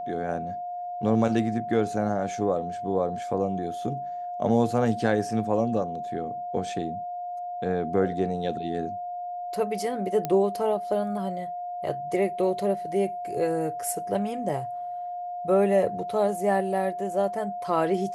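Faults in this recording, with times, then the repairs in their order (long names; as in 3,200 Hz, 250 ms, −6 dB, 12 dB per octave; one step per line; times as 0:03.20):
whistle 710 Hz −31 dBFS
0:10.25: click −14 dBFS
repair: click removal
notch filter 710 Hz, Q 30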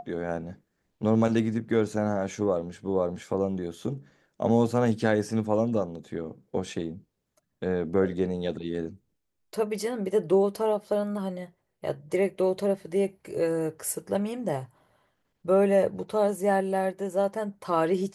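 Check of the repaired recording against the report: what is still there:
none of them is left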